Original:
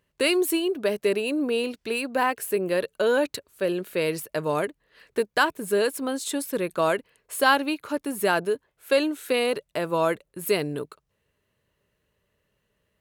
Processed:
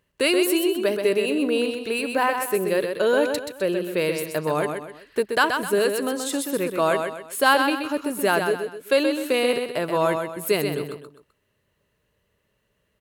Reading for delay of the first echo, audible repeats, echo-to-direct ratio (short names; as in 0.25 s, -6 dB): 0.128 s, 3, -5.5 dB